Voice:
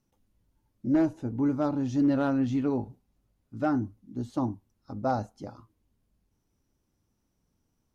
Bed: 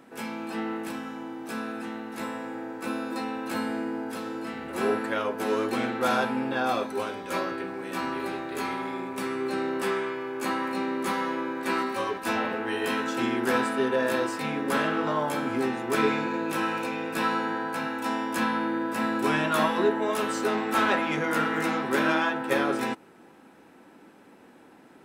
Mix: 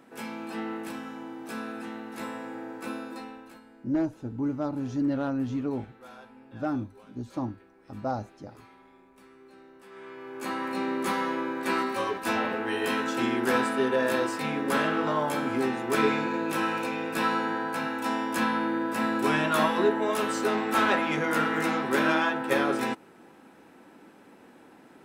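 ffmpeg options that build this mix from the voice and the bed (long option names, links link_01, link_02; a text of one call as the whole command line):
ffmpeg -i stem1.wav -i stem2.wav -filter_complex "[0:a]adelay=3000,volume=-3dB[link_01];[1:a]volume=21dB,afade=type=out:start_time=2.76:duration=0.84:silence=0.0891251,afade=type=in:start_time=9.9:duration=1:silence=0.0668344[link_02];[link_01][link_02]amix=inputs=2:normalize=0" out.wav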